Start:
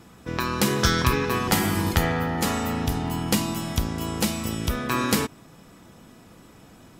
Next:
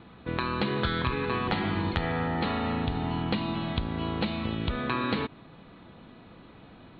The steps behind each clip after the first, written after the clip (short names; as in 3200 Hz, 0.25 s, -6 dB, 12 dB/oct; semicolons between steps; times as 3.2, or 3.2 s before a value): Chebyshev low-pass 4300 Hz, order 8; compressor 4:1, threshold -25 dBFS, peak gain reduction 8.5 dB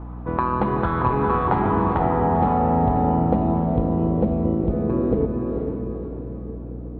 diffused feedback echo 0.477 s, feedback 48%, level -4 dB; hum 60 Hz, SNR 11 dB; low-pass sweep 970 Hz -> 460 Hz, 1.68–4.76; gain +5 dB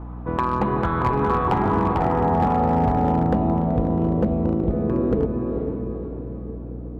hard clip -12.5 dBFS, distortion -21 dB